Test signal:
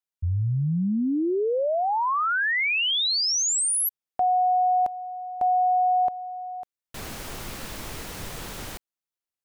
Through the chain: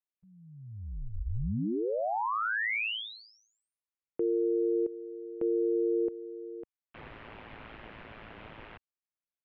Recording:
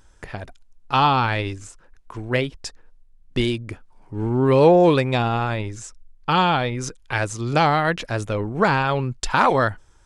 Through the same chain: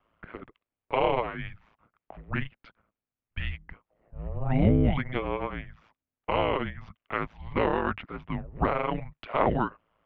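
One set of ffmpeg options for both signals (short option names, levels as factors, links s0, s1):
-af "aeval=exprs='val(0)*sin(2*PI*55*n/s)':c=same,highpass=f=280:t=q:w=0.5412,highpass=f=280:t=q:w=1.307,lowpass=f=3200:t=q:w=0.5176,lowpass=f=3200:t=q:w=0.7071,lowpass=f=3200:t=q:w=1.932,afreqshift=-330,volume=0.631"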